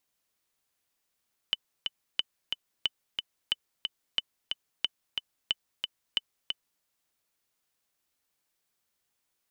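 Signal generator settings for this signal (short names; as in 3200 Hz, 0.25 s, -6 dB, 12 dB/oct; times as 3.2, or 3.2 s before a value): metronome 181 bpm, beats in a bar 2, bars 8, 3010 Hz, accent 4.5 dB -12.5 dBFS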